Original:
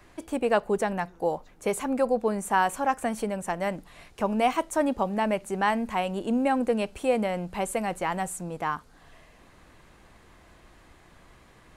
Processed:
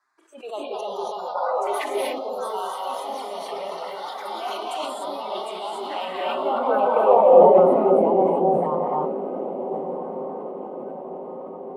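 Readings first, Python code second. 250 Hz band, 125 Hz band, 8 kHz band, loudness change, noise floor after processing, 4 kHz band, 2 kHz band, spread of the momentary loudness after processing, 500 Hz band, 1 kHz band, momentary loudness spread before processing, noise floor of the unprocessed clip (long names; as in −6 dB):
−0.5 dB, −0.5 dB, can't be measured, +5.5 dB, −36 dBFS, +5.0 dB, −5.0 dB, 18 LU, +9.0 dB, +5.5 dB, 7 LU, −56 dBFS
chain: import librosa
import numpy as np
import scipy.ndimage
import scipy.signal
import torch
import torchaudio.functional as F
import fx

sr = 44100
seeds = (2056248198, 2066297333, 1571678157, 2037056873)

p1 = fx.env_flanger(x, sr, rest_ms=8.8, full_db=-25.0)
p2 = fx.over_compress(p1, sr, threshold_db=-33.0, ratio=-0.5)
p3 = p1 + F.gain(torch.from_numpy(p2), 2.0).numpy()
p4 = fx.env_phaser(p3, sr, low_hz=480.0, high_hz=1800.0, full_db=-20.0)
p5 = fx.echo_pitch(p4, sr, ms=292, semitones=3, count=3, db_per_echo=-6.0)
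p6 = fx.band_shelf(p5, sr, hz=680.0, db=13.5, octaves=2.7)
p7 = fx.rev_gated(p6, sr, seeds[0], gate_ms=320, shape='rising', drr_db=-2.5)
p8 = fx.noise_reduce_blind(p7, sr, reduce_db=17)
p9 = fx.spec_box(p8, sr, start_s=1.35, length_s=0.63, low_hz=330.0, high_hz=2100.0, gain_db=9)
p10 = p9 + fx.echo_diffused(p9, sr, ms=1351, feedback_pct=56, wet_db=-12, dry=0)
p11 = fx.filter_sweep_bandpass(p10, sr, from_hz=4100.0, to_hz=330.0, start_s=5.91, end_s=7.85, q=1.3)
p12 = fx.low_shelf(p11, sr, hz=61.0, db=-12.0)
p13 = fx.sustainer(p12, sr, db_per_s=34.0)
y = F.gain(torch.from_numpy(p13), -1.5).numpy()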